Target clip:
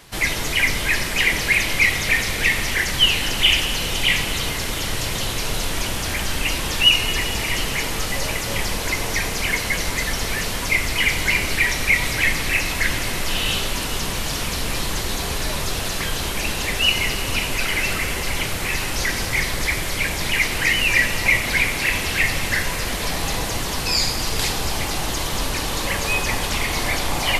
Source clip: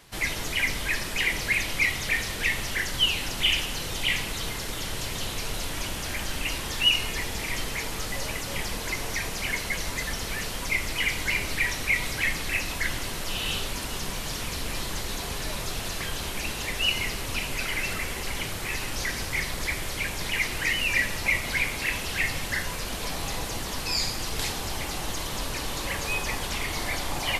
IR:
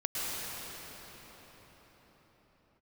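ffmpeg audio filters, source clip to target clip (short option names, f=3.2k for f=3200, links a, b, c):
-filter_complex "[0:a]asplit=2[a][b];[1:a]atrim=start_sample=2205,adelay=94[c];[b][c]afir=irnorm=-1:irlink=0,volume=-17dB[d];[a][d]amix=inputs=2:normalize=0,volume=7dB"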